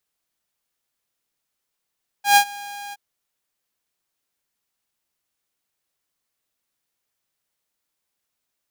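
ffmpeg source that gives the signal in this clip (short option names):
-f lavfi -i "aevalsrc='0.473*(2*mod(813*t,1)-1)':d=0.721:s=44100,afade=t=in:d=0.122,afade=t=out:st=0.122:d=0.081:silence=0.0708,afade=t=out:st=0.69:d=0.031"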